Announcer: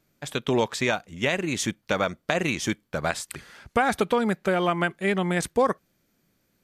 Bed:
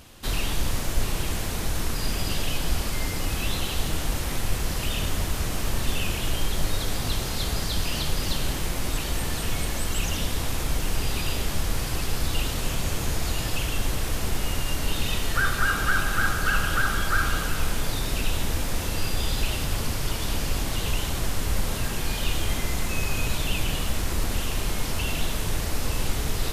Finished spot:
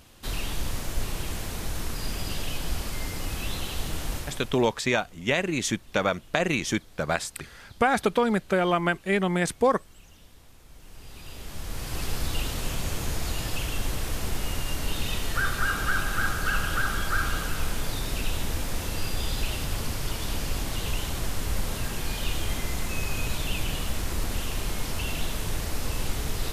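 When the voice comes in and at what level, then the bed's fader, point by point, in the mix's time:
4.05 s, 0.0 dB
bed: 4.16 s -4.5 dB
4.80 s -26 dB
10.63 s -26 dB
12.03 s -3 dB

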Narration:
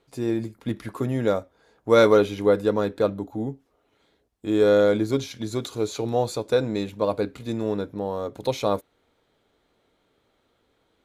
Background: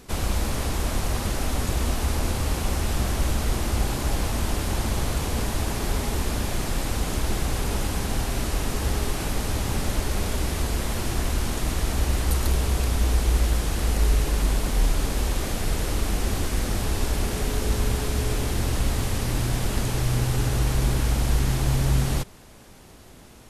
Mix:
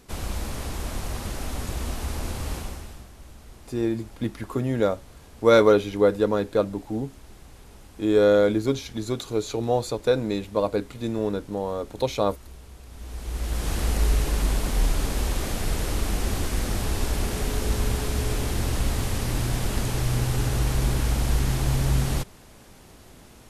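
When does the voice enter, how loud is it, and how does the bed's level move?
3.55 s, 0.0 dB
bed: 2.56 s -5.5 dB
3.10 s -22 dB
12.84 s -22 dB
13.70 s -1 dB

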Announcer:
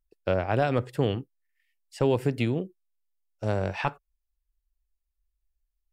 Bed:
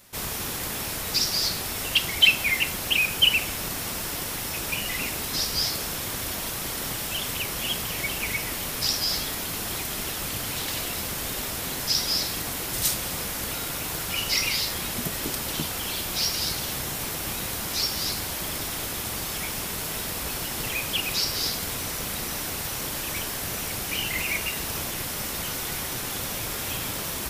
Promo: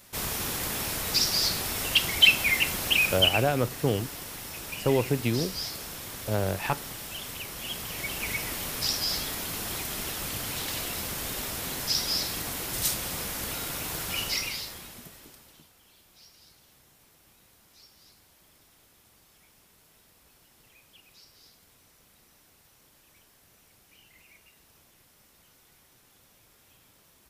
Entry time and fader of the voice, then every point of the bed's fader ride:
2.85 s, -0.5 dB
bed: 3.09 s -0.5 dB
3.53 s -8.5 dB
7.55 s -8.5 dB
8.32 s -3 dB
14.22 s -3 dB
15.74 s -29.5 dB

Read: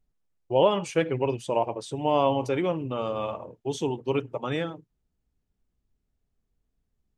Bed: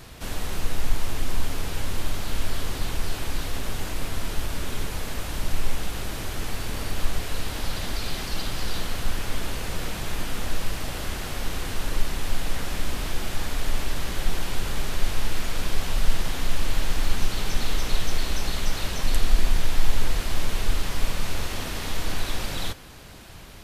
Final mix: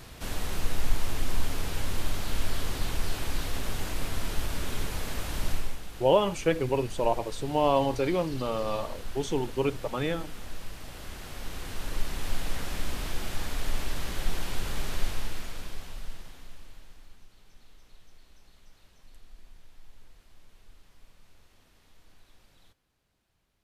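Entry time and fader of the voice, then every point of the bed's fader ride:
5.50 s, -1.0 dB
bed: 5.50 s -2.5 dB
5.81 s -12.5 dB
10.78 s -12.5 dB
12.28 s -4.5 dB
15.00 s -4.5 dB
17.28 s -31.5 dB

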